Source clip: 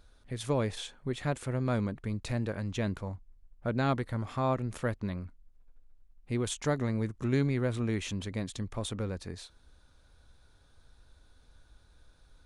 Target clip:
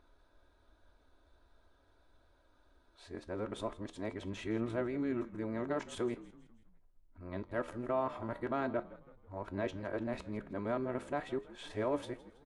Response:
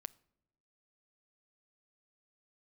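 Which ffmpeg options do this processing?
-filter_complex "[0:a]areverse,aecho=1:1:3.1:0.45,alimiter=level_in=1dB:limit=-24dB:level=0:latency=1:release=31,volume=-1dB,flanger=delay=8.6:depth=6.1:regen=77:speed=0.43:shape=triangular,asplit=2[link_01][link_02];[link_02]adynamicsmooth=sensitivity=3:basefreq=1400,volume=2dB[link_03];[link_01][link_03]amix=inputs=2:normalize=0,bass=frequency=250:gain=-14,treble=frequency=4000:gain=-11,asplit=5[link_04][link_05][link_06][link_07][link_08];[link_05]adelay=163,afreqshift=-46,volume=-18dB[link_09];[link_06]adelay=326,afreqshift=-92,volume=-24.6dB[link_10];[link_07]adelay=489,afreqshift=-138,volume=-31.1dB[link_11];[link_08]adelay=652,afreqshift=-184,volume=-37.7dB[link_12];[link_04][link_09][link_10][link_11][link_12]amix=inputs=5:normalize=0"

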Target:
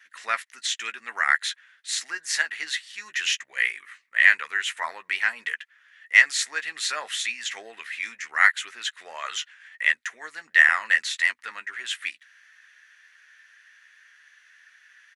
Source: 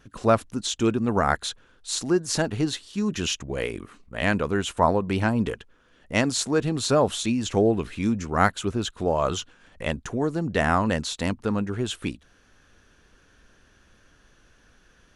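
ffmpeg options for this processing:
ffmpeg -i in.wav -filter_complex "[0:a]highpass=frequency=1900:width_type=q:width=7.2,asplit=2[link_01][link_02];[link_02]adelay=13,volume=-9dB[link_03];[link_01][link_03]amix=inputs=2:normalize=0,volume=-1dB" out.wav

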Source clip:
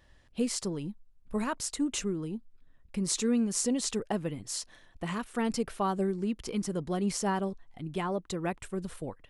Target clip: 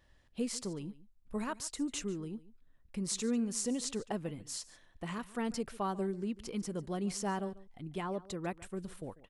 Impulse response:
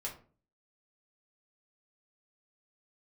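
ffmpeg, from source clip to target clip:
-af "aecho=1:1:144:0.112,volume=-5.5dB"

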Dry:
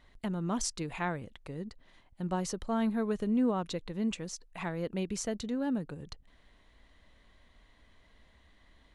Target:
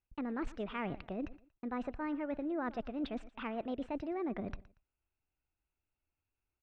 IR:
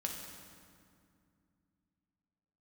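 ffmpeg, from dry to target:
-af "lowpass=frequency=2100:width=0.5412,lowpass=frequency=2100:width=1.3066,agate=range=-35dB:threshold=-52dB:ratio=16:detection=peak,areverse,acompressor=threshold=-42dB:ratio=6,areverse,aecho=1:1:158|316:0.112|0.0303,asetrate=59535,aresample=44100,volume=6.5dB"

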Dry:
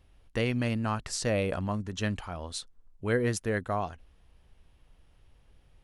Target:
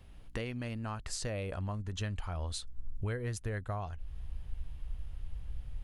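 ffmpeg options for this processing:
ffmpeg -i in.wav -af "bandreject=frequency=5600:width=19,aeval=exprs='val(0)+0.000562*(sin(2*PI*60*n/s)+sin(2*PI*2*60*n/s)/2+sin(2*PI*3*60*n/s)/3+sin(2*PI*4*60*n/s)/4+sin(2*PI*5*60*n/s)/5)':channel_layout=same,acompressor=threshold=-45dB:ratio=3,asubboost=boost=7:cutoff=95,volume=5dB" out.wav

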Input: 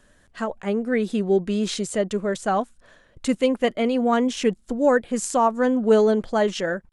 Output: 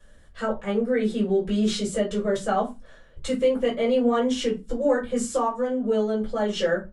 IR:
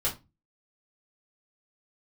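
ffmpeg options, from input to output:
-filter_complex "[0:a]asettb=1/sr,asplit=3[link_01][link_02][link_03];[link_01]atrim=end=5.484[link_04];[link_02]atrim=start=5.48:end=6.42,asetpts=PTS-STARTPTS,afade=type=in:duration=0.004:curve=qsin,afade=type=out:start_time=0.936:duration=0.004:curve=qsin,acompressor=threshold=-29dB:ratio=2[link_05];[link_03]atrim=start=6.416[link_06];[link_04][link_05]acrossfade=duration=0.004:curve1=hsin:curve2=qsin[link_07];[link_07][link_06]acrossfade=duration=0.004:curve1=qsin:curve2=hsin,alimiter=limit=-15.5dB:level=0:latency=1:release=115[link_08];[1:a]atrim=start_sample=2205[link_09];[link_08][link_09]afir=irnorm=-1:irlink=0,volume=-7.5dB"

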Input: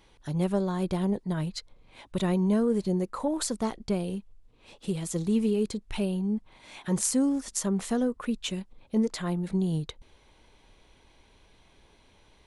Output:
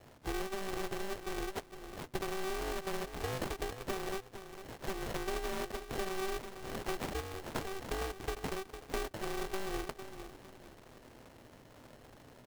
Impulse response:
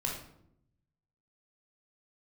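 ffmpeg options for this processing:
-filter_complex "[0:a]acrossover=split=350|3000[link_01][link_02][link_03];[link_02]acompressor=threshold=-39dB:ratio=6[link_04];[link_01][link_04][link_03]amix=inputs=3:normalize=0,highpass=frequency=52:width=0.5412,highpass=frequency=52:width=1.3066,acompressor=threshold=-39dB:ratio=12,asettb=1/sr,asplit=3[link_05][link_06][link_07];[link_05]atrim=end=7.204[link_08];[link_06]atrim=start=7.2:end=7.88,asetpts=PTS-STARTPTS,afade=type=in:duration=0.004:curve=qsin,afade=type=out:start_time=0.676:duration=0.004:curve=qsin,equalizer=frequency=330:width_type=o:width=1:gain=-10[link_09];[link_07]atrim=start=7.876[link_10];[link_08][link_09]acrossfade=duration=0.004:curve1=hsin:curve2=qsin[link_11];[link_11][link_10]acrossfade=duration=0.004:curve1=qsin:curve2=hsin,aecho=1:1:455|910|1365:0.299|0.0955|0.0306,acrusher=samples=37:mix=1:aa=0.000001,aeval=exprs='val(0)*sgn(sin(2*PI*190*n/s))':channel_layout=same,volume=4.5dB"

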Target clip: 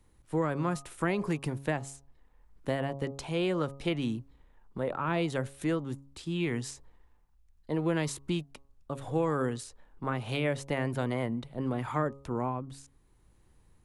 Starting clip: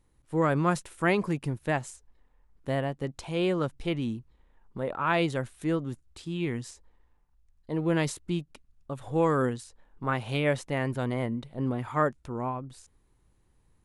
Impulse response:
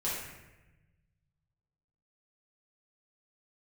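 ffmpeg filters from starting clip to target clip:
-filter_complex "[0:a]tremolo=f=0.74:d=0.33,acrossover=split=100|480[link_01][link_02][link_03];[link_01]acompressor=threshold=-52dB:ratio=4[link_04];[link_02]acompressor=threshold=-34dB:ratio=4[link_05];[link_03]acompressor=threshold=-36dB:ratio=4[link_06];[link_04][link_05][link_06]amix=inputs=3:normalize=0,bandreject=frequency=137.9:width_type=h:width=4,bandreject=frequency=275.8:width_type=h:width=4,bandreject=frequency=413.7:width_type=h:width=4,bandreject=frequency=551.6:width_type=h:width=4,bandreject=frequency=689.5:width_type=h:width=4,bandreject=frequency=827.4:width_type=h:width=4,bandreject=frequency=965.3:width_type=h:width=4,bandreject=frequency=1103.2:width_type=h:width=4,bandreject=frequency=1241.1:width_type=h:width=4,volume=4dB"

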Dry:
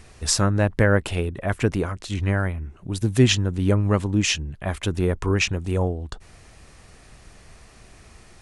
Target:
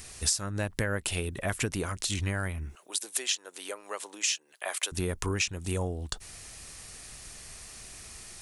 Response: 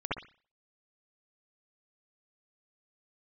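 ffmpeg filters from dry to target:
-filter_complex "[0:a]crystalizer=i=5.5:c=0,acompressor=threshold=-22dB:ratio=6,asettb=1/sr,asplit=3[link_01][link_02][link_03];[link_01]atrim=end=2.754[link_04];[link_02]atrim=start=2.75:end=4.92,asetpts=PTS-STARTPTS,afade=type=in:duration=0.004:curve=qsin,afade=type=out:start_time=2.166:duration=0.004:curve=qsin,highpass=frequency=470:width=0.5412,highpass=frequency=470:width=1.3066[link_05];[link_03]atrim=start=4.916[link_06];[link_04][link_05]acrossfade=duration=0.004:curve1=hsin:curve2=qsin[link_07];[link_07][link_06]acrossfade=duration=0.004:curve1=qsin:curve2=hsin,volume=-4.5dB"

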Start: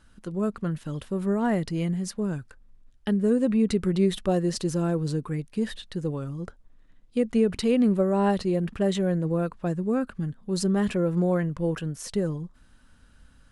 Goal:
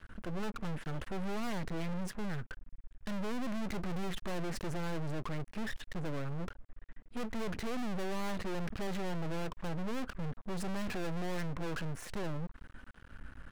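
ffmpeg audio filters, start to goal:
ffmpeg -i in.wav -af "highshelf=frequency=3000:width_type=q:width=1.5:gain=-13,aeval=exprs='max(val(0),0)':channel_layout=same,aeval=exprs='(tanh(70.8*val(0)+0.55)-tanh(0.55))/70.8':channel_layout=same,volume=12dB" out.wav

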